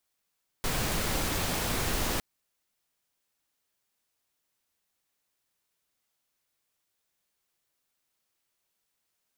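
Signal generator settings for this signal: noise pink, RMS -29.5 dBFS 1.56 s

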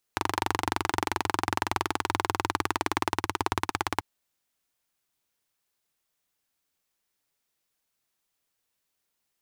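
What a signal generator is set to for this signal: single-cylinder engine model, changing speed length 3.84 s, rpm 2900, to 2000, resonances 97/330/880 Hz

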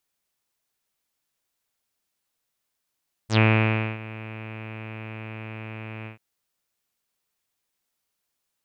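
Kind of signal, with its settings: synth note saw A2 24 dB/oct, low-pass 2500 Hz, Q 5.9, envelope 2 oct, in 0.09 s, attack 86 ms, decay 0.60 s, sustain -20 dB, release 0.12 s, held 2.77 s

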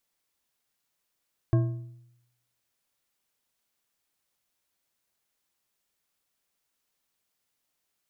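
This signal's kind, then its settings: metal hit bar, lowest mode 121 Hz, decay 0.84 s, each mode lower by 7.5 dB, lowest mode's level -17 dB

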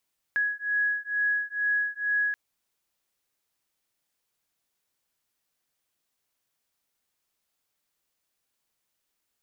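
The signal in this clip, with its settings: beating tones 1670 Hz, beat 2.2 Hz, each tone -27.5 dBFS 1.98 s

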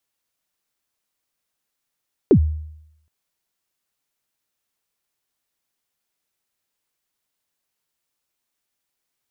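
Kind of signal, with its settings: kick drum length 0.77 s, from 460 Hz, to 77 Hz, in 80 ms, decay 0.79 s, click off, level -6.5 dB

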